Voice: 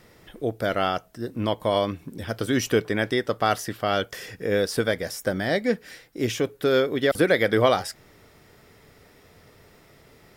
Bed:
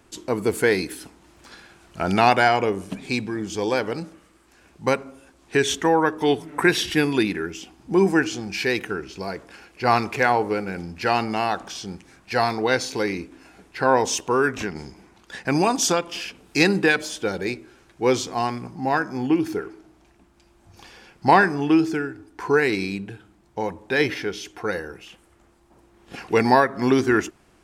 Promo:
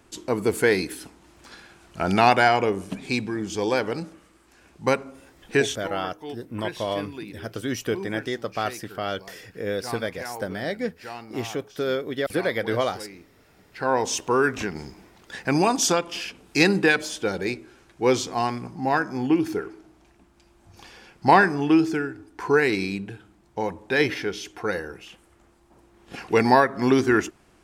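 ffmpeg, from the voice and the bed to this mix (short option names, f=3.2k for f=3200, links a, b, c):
-filter_complex "[0:a]adelay=5150,volume=-5dB[a];[1:a]volume=15.5dB,afade=t=out:st=5.6:d=0.2:silence=0.158489,afade=t=in:st=13.42:d=0.89:silence=0.158489[b];[a][b]amix=inputs=2:normalize=0"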